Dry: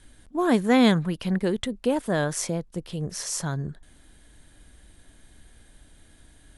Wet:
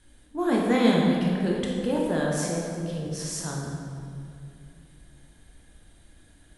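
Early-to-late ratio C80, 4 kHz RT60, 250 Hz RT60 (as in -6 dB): 1.5 dB, 1.5 s, 3.0 s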